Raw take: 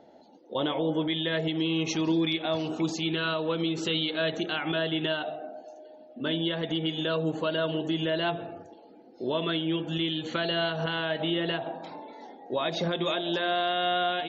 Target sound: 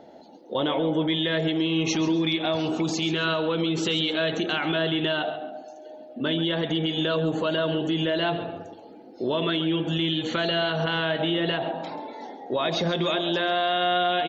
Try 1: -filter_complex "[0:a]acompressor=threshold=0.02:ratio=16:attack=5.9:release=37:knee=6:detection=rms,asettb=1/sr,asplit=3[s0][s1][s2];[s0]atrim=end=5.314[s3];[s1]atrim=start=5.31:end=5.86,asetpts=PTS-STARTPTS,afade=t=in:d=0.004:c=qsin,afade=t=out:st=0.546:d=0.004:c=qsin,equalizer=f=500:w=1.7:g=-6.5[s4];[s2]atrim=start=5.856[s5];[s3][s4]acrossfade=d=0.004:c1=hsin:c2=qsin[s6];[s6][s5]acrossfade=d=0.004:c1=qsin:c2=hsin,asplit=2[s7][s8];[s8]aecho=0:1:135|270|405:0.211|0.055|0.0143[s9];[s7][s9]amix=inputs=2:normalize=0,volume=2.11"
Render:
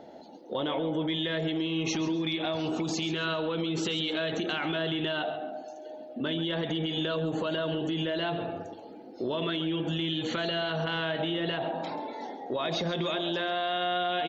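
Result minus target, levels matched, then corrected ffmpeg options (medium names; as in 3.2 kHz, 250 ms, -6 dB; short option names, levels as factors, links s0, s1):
compression: peak gain reduction +6.5 dB
-filter_complex "[0:a]acompressor=threshold=0.0447:ratio=16:attack=5.9:release=37:knee=6:detection=rms,asettb=1/sr,asplit=3[s0][s1][s2];[s0]atrim=end=5.314[s3];[s1]atrim=start=5.31:end=5.86,asetpts=PTS-STARTPTS,afade=t=in:d=0.004:c=qsin,afade=t=out:st=0.546:d=0.004:c=qsin,equalizer=f=500:w=1.7:g=-6.5[s4];[s2]atrim=start=5.856[s5];[s3][s4]acrossfade=d=0.004:c1=hsin:c2=qsin[s6];[s6][s5]acrossfade=d=0.004:c1=qsin:c2=hsin,asplit=2[s7][s8];[s8]aecho=0:1:135|270|405:0.211|0.055|0.0143[s9];[s7][s9]amix=inputs=2:normalize=0,volume=2.11"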